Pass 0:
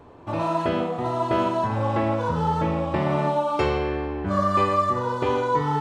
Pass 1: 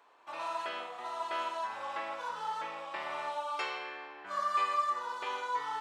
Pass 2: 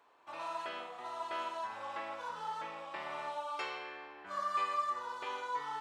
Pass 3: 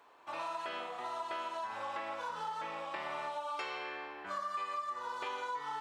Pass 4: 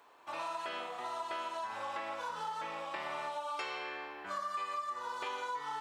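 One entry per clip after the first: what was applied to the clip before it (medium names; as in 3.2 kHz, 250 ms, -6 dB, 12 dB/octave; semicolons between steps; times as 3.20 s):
high-pass 1.2 kHz 12 dB/octave; trim -5 dB
bass shelf 240 Hz +8.5 dB; trim -4 dB
compression, threshold -41 dBFS, peak gain reduction 11 dB; trim +5 dB
treble shelf 5.4 kHz +5 dB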